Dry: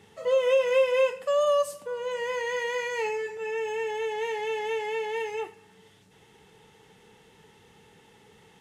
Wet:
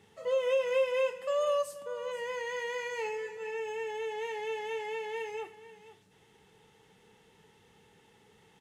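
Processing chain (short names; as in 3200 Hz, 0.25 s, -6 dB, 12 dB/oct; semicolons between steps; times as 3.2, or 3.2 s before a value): echo 0.486 s -16 dB; gain -6 dB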